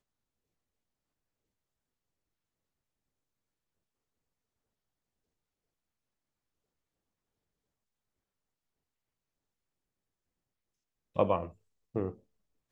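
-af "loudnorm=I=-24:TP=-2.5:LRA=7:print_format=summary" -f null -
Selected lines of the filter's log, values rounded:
Input Integrated:    -33.7 LUFS
Input True Peak:     -12.4 dBTP
Input LRA:             0.7 LU
Input Threshold:     -44.7 LUFS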